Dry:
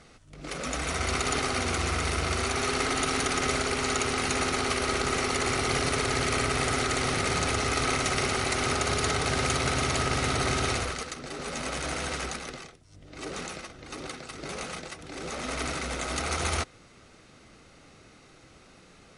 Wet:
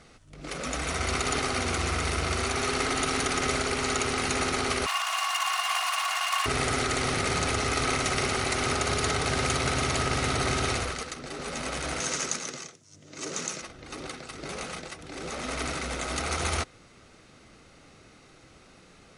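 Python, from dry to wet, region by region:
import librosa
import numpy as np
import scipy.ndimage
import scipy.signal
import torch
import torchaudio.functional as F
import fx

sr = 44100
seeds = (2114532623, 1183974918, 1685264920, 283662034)

y = fx.chain(x, sr, fx.lower_of_two(delay_ms=2.8),
    fx.ellip_highpass(hz=720.0, order=4, stop_db=50),
    fx.small_body(hz=(1100.0, 2800.0), ring_ms=40, db=15), at=(4.86, 6.46))
y = fx.chain(y, sr, fx.highpass(hz=110.0, slope=24),
    fx.peak_eq(hz=6500.0, db=12.0, octaves=0.63),
    fx.notch(hz=760.0, q=9.9), at=(12.0, 13.62))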